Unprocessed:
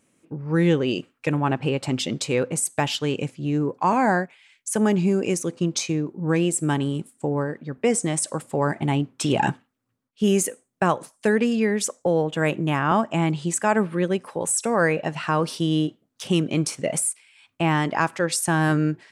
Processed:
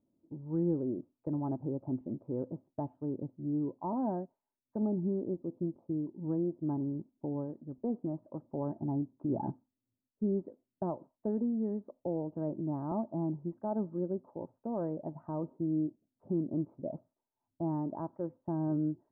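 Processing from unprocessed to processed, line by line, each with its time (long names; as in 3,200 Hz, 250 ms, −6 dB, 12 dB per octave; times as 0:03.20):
0:04.82–0:06.06: low-pass filter 1,100 Hz
whole clip: Butterworth low-pass 850 Hz 36 dB per octave; parametric band 620 Hz −7 dB 1.9 octaves; comb filter 3.2 ms, depth 40%; level −8 dB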